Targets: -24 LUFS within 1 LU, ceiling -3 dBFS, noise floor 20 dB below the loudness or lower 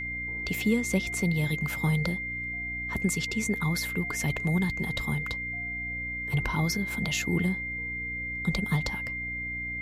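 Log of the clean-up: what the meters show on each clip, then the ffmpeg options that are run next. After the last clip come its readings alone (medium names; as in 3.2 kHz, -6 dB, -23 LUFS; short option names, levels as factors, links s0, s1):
hum 60 Hz; highest harmonic 300 Hz; hum level -40 dBFS; steady tone 2.1 kHz; tone level -32 dBFS; loudness -29.0 LUFS; peak level -14.0 dBFS; loudness target -24.0 LUFS
-> -af "bandreject=f=60:t=h:w=4,bandreject=f=120:t=h:w=4,bandreject=f=180:t=h:w=4,bandreject=f=240:t=h:w=4,bandreject=f=300:t=h:w=4"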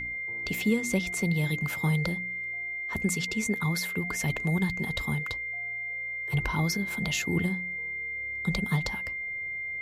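hum not found; steady tone 2.1 kHz; tone level -32 dBFS
-> -af "bandreject=f=2100:w=30"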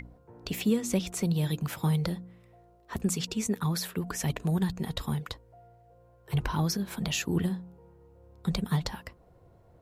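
steady tone not found; loudness -31.0 LUFS; peak level -14.5 dBFS; loudness target -24.0 LUFS
-> -af "volume=2.24"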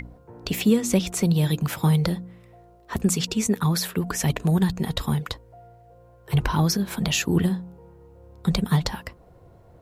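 loudness -24.0 LUFS; peak level -7.5 dBFS; noise floor -52 dBFS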